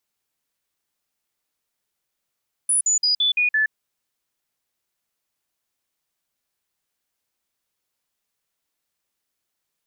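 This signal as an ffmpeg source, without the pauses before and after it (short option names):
-f lavfi -i "aevalsrc='0.158*clip(min(mod(t,0.17),0.12-mod(t,0.17))/0.005,0,1)*sin(2*PI*9830*pow(2,-floor(t/0.17)/2)*mod(t,0.17))':d=1.02:s=44100"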